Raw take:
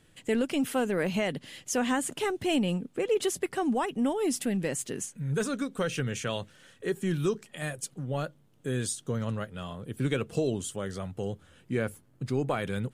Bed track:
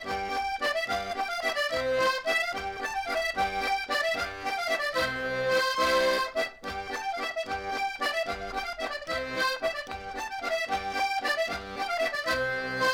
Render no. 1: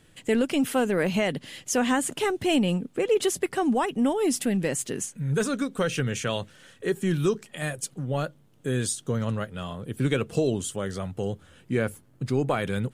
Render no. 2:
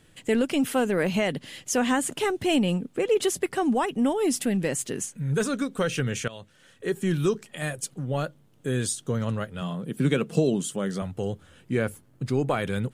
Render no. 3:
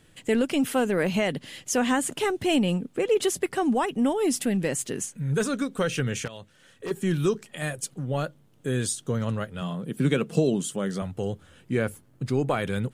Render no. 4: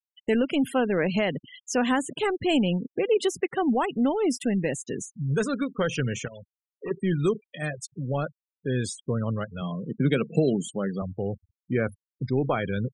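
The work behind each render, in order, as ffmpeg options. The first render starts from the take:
ffmpeg -i in.wav -af "volume=4dB" out.wav
ffmpeg -i in.wav -filter_complex "[0:a]asettb=1/sr,asplit=3[link_01][link_02][link_03];[link_01]atrim=end=9.614[link_04];[link_02]atrim=start=9.61:end=11.02,asetpts=PTS-STARTPTS,afade=type=in:duration=0.004:curve=qsin,afade=type=out:start_time=1.406:duration=0.004:curve=qsin,lowshelf=frequency=120:width_type=q:width=3:gain=-11[link_05];[link_03]atrim=start=11.016[link_06];[link_04][link_05]acrossfade=duration=0.004:curve1=hsin:curve2=qsin[link_07];[link_07][link_06]acrossfade=duration=0.004:curve1=qsin:curve2=hsin,asplit=2[link_08][link_09];[link_08]atrim=end=6.28,asetpts=PTS-STARTPTS,afade=type=out:start_time=6.276:duration=0.004:curve=hsin:silence=0.141254[link_10];[link_09]atrim=start=6.28,asetpts=PTS-STARTPTS,afade=type=in:duration=0.73:silence=0.141254[link_11];[link_10][link_11]concat=n=2:v=0:a=1" out.wav
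ffmpeg -i in.wav -filter_complex "[0:a]asettb=1/sr,asplit=3[link_01][link_02][link_03];[link_01]atrim=end=6.254[link_04];[link_02]atrim=start=6.25:end=6.91,asetpts=PTS-STARTPTS,afade=type=in:duration=0.004:curve=qsin,afade=type=out:start_time=0.656:duration=0.004:curve=qsin,volume=29dB,asoftclip=hard,volume=-29dB[link_05];[link_03]atrim=start=6.906[link_06];[link_04][link_05]acrossfade=duration=0.004:curve1=hsin:curve2=qsin[link_07];[link_07][link_06]acrossfade=duration=0.004:curve1=qsin:curve2=hsin" out.wav
ffmpeg -i in.wav -filter_complex "[0:a]afftfilt=real='re*gte(hypot(re,im),0.0251)':imag='im*gte(hypot(re,im),0.0251)':win_size=1024:overlap=0.75,acrossover=split=6700[link_01][link_02];[link_02]acompressor=threshold=-43dB:ratio=4:attack=1:release=60[link_03];[link_01][link_03]amix=inputs=2:normalize=0" out.wav

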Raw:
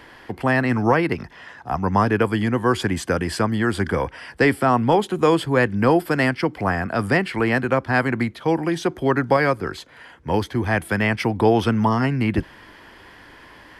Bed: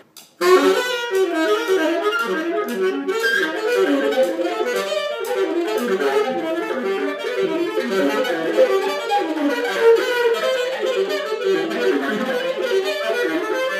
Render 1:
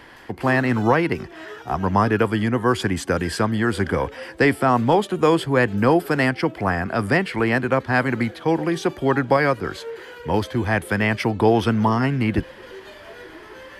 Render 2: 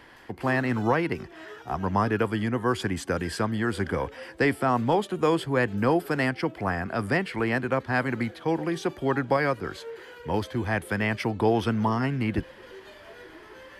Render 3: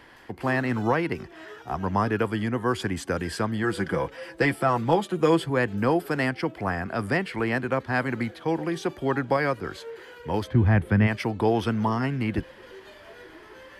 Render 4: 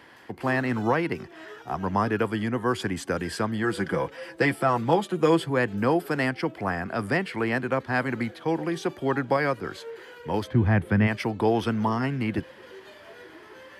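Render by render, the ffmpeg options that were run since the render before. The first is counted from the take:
ffmpeg -i in.wav -i bed.wav -filter_complex "[1:a]volume=-21dB[link_01];[0:a][link_01]amix=inputs=2:normalize=0" out.wav
ffmpeg -i in.wav -af "volume=-6dB" out.wav
ffmpeg -i in.wav -filter_complex "[0:a]asettb=1/sr,asplit=3[link_01][link_02][link_03];[link_01]atrim=end=3.634[link_04];[link_02]atrim=start=3.63:end=5.5,asetpts=PTS-STARTPTS,afade=type=in:duration=0.004:curve=qsin,afade=type=out:start_time=1.866:duration=0.004:curve=qsin,aecho=1:1:6:0.55,atrim=end_sample=82467[link_05];[link_03]atrim=start=5.496[link_06];[link_04][link_05]acrossfade=duration=0.004:curve1=hsin:curve2=qsin[link_07];[link_07][link_06]acrossfade=duration=0.004:curve1=qsin:curve2=hsin,asplit=3[link_08][link_09][link_10];[link_08]afade=type=out:start_time=10.47:duration=0.02[link_11];[link_09]bass=frequency=250:gain=13,treble=frequency=4000:gain=-13,afade=type=in:start_time=10.47:duration=0.02,afade=type=out:start_time=11.06:duration=0.02[link_12];[link_10]afade=type=in:start_time=11.06:duration=0.02[link_13];[link_11][link_12][link_13]amix=inputs=3:normalize=0" out.wav
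ffmpeg -i in.wav -af "highpass=96" out.wav

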